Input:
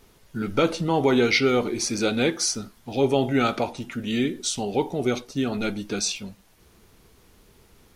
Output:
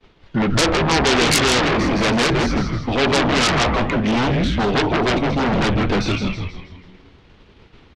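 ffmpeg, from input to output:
ffmpeg -i in.wav -filter_complex "[0:a]lowpass=frequency=3500:width=0.5412,lowpass=frequency=3500:width=1.3066,agate=range=-33dB:threshold=-47dB:ratio=3:detection=peak,acrossover=split=100|2200[link_01][link_02][link_03];[link_03]acompressor=threshold=-52dB:ratio=6[link_04];[link_01][link_02][link_04]amix=inputs=3:normalize=0,asplit=7[link_05][link_06][link_07][link_08][link_09][link_10][link_11];[link_06]adelay=161,afreqshift=-95,volume=-5dB[link_12];[link_07]adelay=322,afreqshift=-190,volume=-11.9dB[link_13];[link_08]adelay=483,afreqshift=-285,volume=-18.9dB[link_14];[link_09]adelay=644,afreqshift=-380,volume=-25.8dB[link_15];[link_10]adelay=805,afreqshift=-475,volume=-32.7dB[link_16];[link_11]adelay=966,afreqshift=-570,volume=-39.7dB[link_17];[link_05][link_12][link_13][link_14][link_15][link_16][link_17]amix=inputs=7:normalize=0,asplit=2[link_18][link_19];[link_19]aeval=exprs='0.422*sin(PI/2*8.91*val(0)/0.422)':channel_layout=same,volume=-8dB[link_20];[link_18][link_20]amix=inputs=2:normalize=0,crystalizer=i=2:c=0,volume=-1.5dB" out.wav

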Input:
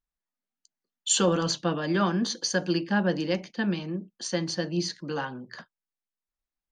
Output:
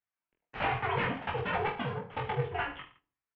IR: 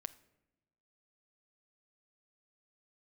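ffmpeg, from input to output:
-filter_complex "[0:a]lowshelf=frequency=390:width_type=q:width=1.5:gain=-7,asplit=2[link_01][link_02];[link_02]acompressor=threshold=-36dB:ratio=6,volume=-3dB[link_03];[link_01][link_03]amix=inputs=2:normalize=0,flanger=delay=5.3:depth=8.6:regen=61:speed=0.7:shape=triangular,aeval=exprs='(mod(15*val(0)+1,2)-1)/15':channel_layout=same,aeval=exprs='0.0668*(cos(1*acos(clip(val(0)/0.0668,-1,1)))-cos(1*PI/2))+0.00668*(cos(6*acos(clip(val(0)/0.0668,-1,1)))-cos(6*PI/2))':channel_layout=same,flanger=delay=3.3:depth=9.3:regen=-48:speed=1.5:shape=sinusoidal,asplit=2[link_04][link_05];[link_05]adelay=47,volume=-8.5dB[link_06];[link_04][link_06]amix=inputs=2:normalize=0,aecho=1:1:40|90|152.5|230.6|328.3:0.631|0.398|0.251|0.158|0.1,asplit=2[link_07][link_08];[1:a]atrim=start_sample=2205,lowpass=4000[link_09];[link_08][link_09]afir=irnorm=-1:irlink=0,volume=7.5dB[link_10];[link_07][link_10]amix=inputs=2:normalize=0,asetrate=88200,aresample=44100,highpass=frequency=170:width_type=q:width=0.5412,highpass=frequency=170:width_type=q:width=1.307,lowpass=frequency=2800:width_type=q:width=0.5176,lowpass=frequency=2800:width_type=q:width=0.7071,lowpass=frequency=2800:width_type=q:width=1.932,afreqshift=-210,volume=-3dB"

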